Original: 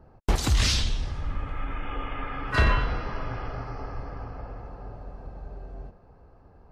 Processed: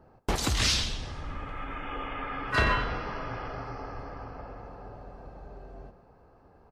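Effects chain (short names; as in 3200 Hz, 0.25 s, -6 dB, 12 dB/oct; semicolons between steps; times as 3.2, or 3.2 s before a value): low shelf 120 Hz -10 dB; echo 0.134 s -14.5 dB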